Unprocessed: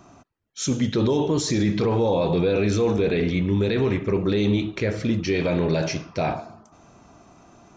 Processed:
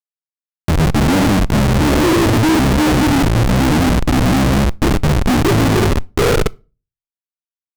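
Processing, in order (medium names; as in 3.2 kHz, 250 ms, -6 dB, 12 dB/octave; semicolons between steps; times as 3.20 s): high-pass 48 Hz 6 dB/octave; gate -40 dBFS, range -49 dB; FFT filter 230 Hz 0 dB, 830 Hz +8 dB, 2 kHz -22 dB; harmonic-percussive split harmonic +5 dB; reverse; upward compressor, threshold -21 dBFS; reverse; pitch shift -7.5 st; Schmitt trigger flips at -21 dBFS; on a send at -21 dB: reverberation RT60 0.35 s, pre-delay 6 ms; on the sum: loudspeaker Doppler distortion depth 0.56 ms; trim +5 dB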